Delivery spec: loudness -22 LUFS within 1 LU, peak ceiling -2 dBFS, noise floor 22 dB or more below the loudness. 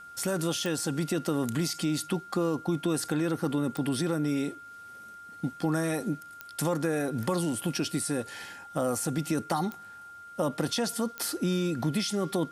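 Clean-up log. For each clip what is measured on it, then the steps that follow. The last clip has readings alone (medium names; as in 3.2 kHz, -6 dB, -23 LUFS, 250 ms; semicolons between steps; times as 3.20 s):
clicks found 5; steady tone 1.4 kHz; tone level -44 dBFS; loudness -30.0 LUFS; peak level -13.0 dBFS; loudness target -22.0 LUFS
-> de-click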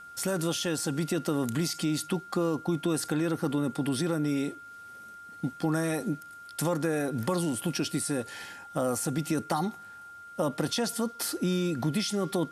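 clicks found 0; steady tone 1.4 kHz; tone level -44 dBFS
-> band-stop 1.4 kHz, Q 30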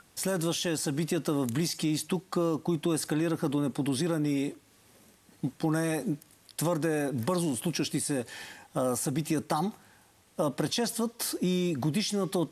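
steady tone not found; loudness -30.0 LUFS; peak level -13.0 dBFS; loudness target -22.0 LUFS
-> trim +8 dB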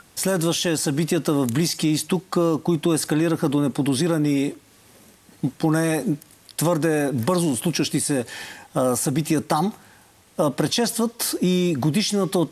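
loudness -22.0 LUFS; peak level -5.0 dBFS; noise floor -54 dBFS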